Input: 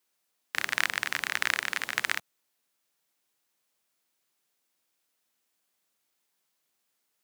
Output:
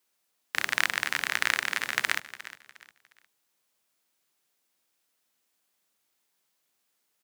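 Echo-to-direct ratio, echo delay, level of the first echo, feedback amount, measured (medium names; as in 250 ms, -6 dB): -15.0 dB, 357 ms, -15.5 dB, 32%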